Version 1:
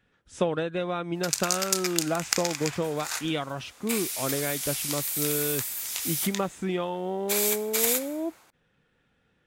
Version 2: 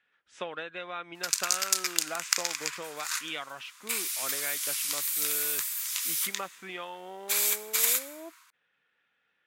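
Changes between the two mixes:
speech: add band-pass filter 2.1 kHz, Q 1; background: add brick-wall FIR high-pass 930 Hz

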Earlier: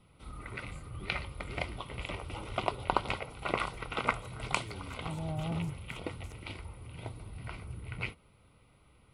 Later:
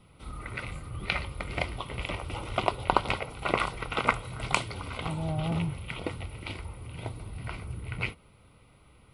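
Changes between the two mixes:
first sound +5.0 dB; second sound: muted

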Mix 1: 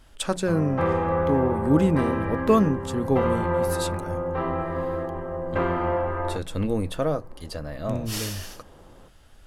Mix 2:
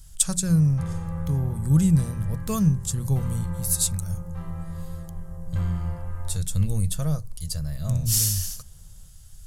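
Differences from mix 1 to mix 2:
speech +7.5 dB; master: add FFT filter 170 Hz 0 dB, 260 Hz -24 dB, 2.7 kHz -14 dB, 7.1 kHz +6 dB

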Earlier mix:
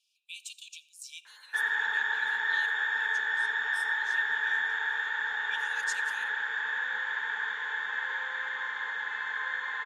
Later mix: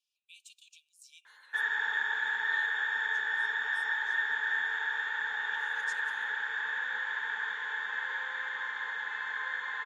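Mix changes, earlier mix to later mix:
speech -10.0 dB; reverb: off

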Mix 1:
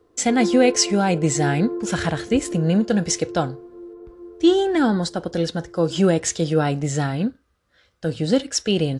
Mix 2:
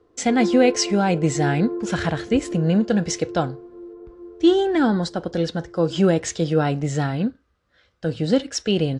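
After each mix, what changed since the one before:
master: add distance through air 66 m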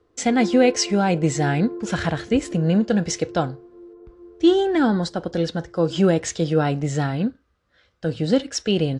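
background -4.5 dB

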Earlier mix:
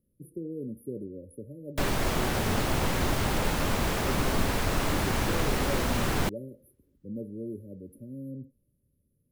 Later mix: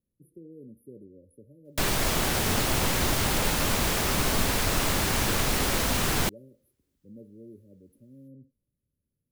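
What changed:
speech -10.0 dB; background: add treble shelf 2.7 kHz +9 dB

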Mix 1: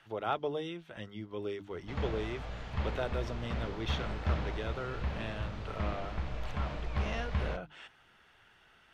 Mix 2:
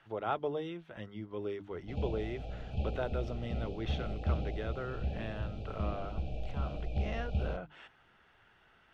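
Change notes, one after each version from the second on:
background: add brick-wall FIR band-stop 840–2300 Hz; master: add treble shelf 3.7 kHz -12 dB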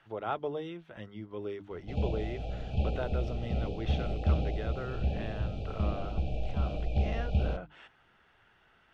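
background +5.0 dB

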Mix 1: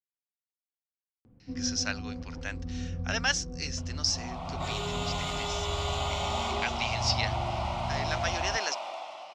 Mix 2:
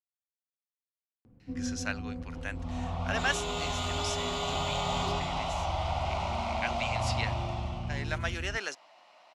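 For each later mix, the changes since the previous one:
speech: remove resonant low-pass 5.4 kHz, resonance Q 4.5; second sound: entry -1.45 s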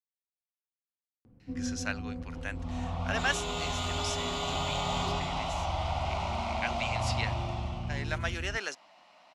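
second sound: add resonant low shelf 290 Hz +7.5 dB, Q 1.5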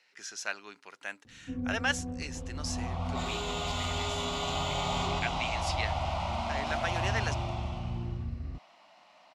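speech: entry -1.40 s

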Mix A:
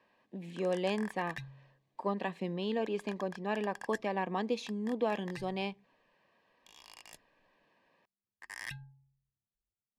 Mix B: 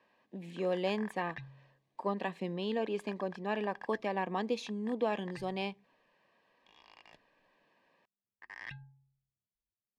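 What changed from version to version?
background: add distance through air 260 m; master: add bass shelf 94 Hz -6 dB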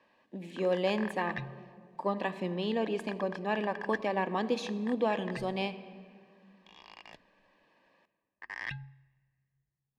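background +6.5 dB; reverb: on, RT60 2.0 s

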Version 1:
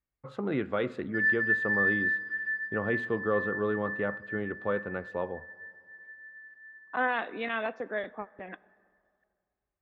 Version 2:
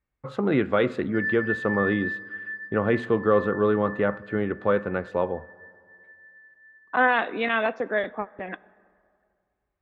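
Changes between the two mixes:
speech +8.0 dB; background -3.0 dB

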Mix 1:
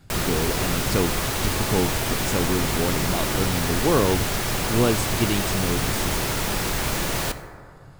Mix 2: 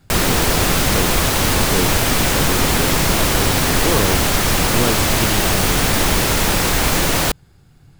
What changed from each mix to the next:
background +11.5 dB; reverb: off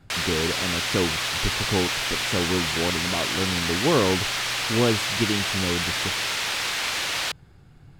background: add band-pass filter 4.3 kHz, Q 0.8; master: add tone controls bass -1 dB, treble -8 dB

